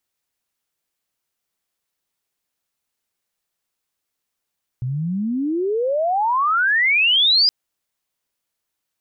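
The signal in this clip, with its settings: sweep logarithmic 120 Hz -> 5 kHz -21 dBFS -> -11.5 dBFS 2.67 s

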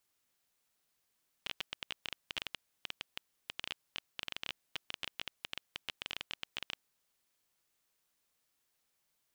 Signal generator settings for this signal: random clicks 12 per s -20 dBFS 5.93 s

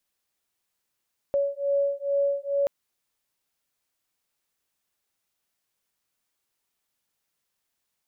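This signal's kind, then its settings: beating tones 561 Hz, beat 2.3 Hz, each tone -25.5 dBFS 1.33 s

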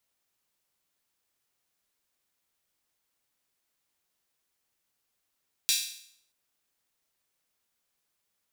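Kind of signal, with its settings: open hi-hat length 0.63 s, high-pass 3.5 kHz, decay 0.64 s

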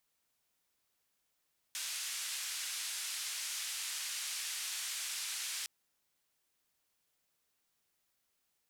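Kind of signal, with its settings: noise band 1.9–9.3 kHz, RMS -40 dBFS 3.91 s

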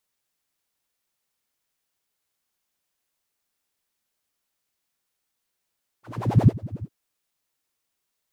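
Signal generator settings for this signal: synth patch with filter wobble A#2, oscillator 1 triangle, oscillator 2 level -16 dB, noise -4 dB, filter bandpass, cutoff 140 Hz, Q 7.4, filter envelope 2 oct, filter decay 0.49 s, filter sustain 40%, attack 417 ms, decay 0.09 s, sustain -22 dB, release 0.06 s, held 0.80 s, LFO 11 Hz, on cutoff 1.4 oct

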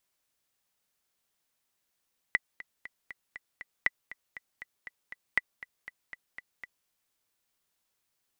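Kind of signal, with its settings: metronome 238 bpm, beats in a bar 6, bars 3, 1.98 kHz, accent 18 dB -10.5 dBFS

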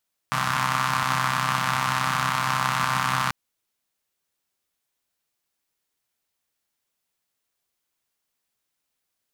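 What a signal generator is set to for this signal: four-cylinder engine model, steady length 2.99 s, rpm 3900, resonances 160/1100 Hz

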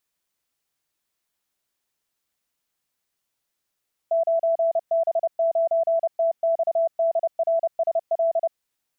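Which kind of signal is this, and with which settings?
Morse "9B9TXDRSL" 30 wpm 663 Hz -17.5 dBFS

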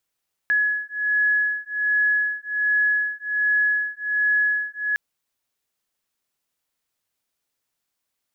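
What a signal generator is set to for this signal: beating tones 1.69 kHz, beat 1.3 Hz, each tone -22 dBFS 4.46 s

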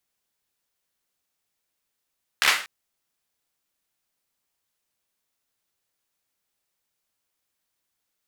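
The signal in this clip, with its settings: hand clap length 0.24 s, bursts 5, apart 14 ms, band 1.9 kHz, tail 0.40 s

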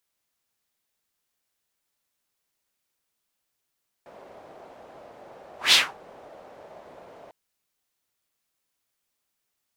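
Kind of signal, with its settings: whoosh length 3.25 s, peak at 1.67 s, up 0.16 s, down 0.24 s, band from 630 Hz, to 3.6 kHz, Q 2.3, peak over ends 32 dB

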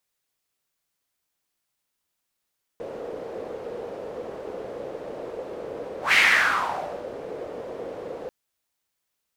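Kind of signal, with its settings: whoosh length 5.49 s, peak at 3.34 s, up 0.14 s, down 0.99 s, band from 490 Hz, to 2.2 kHz, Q 4.3, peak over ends 18 dB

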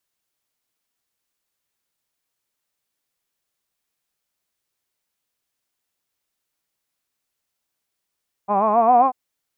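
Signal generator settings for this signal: formant-synthesis vowel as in hod, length 0.64 s, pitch 194 Hz, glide +5.5 st, vibrato 7.5 Hz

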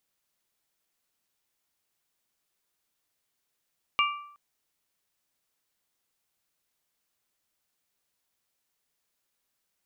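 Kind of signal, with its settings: glass hit bell, length 0.37 s, lowest mode 1.17 kHz, modes 3, decay 0.69 s, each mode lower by 1 dB, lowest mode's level -21.5 dB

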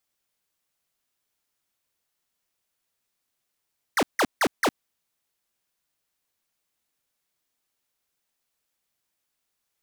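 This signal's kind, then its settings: burst of laser zaps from 2.2 kHz, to 200 Hz, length 0.06 s square, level -20.5 dB, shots 4, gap 0.16 s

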